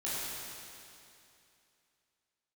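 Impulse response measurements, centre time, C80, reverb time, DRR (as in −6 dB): 190 ms, −2.5 dB, 2.7 s, −10.0 dB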